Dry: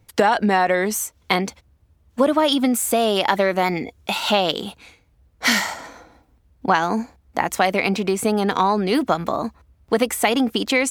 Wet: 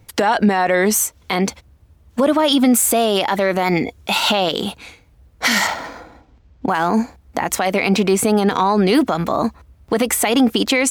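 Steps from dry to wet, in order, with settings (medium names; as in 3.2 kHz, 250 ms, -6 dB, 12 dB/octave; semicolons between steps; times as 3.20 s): loudness maximiser +13 dB; 5.67–6.94 s: decimation joined by straight lines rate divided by 4×; trim -5.5 dB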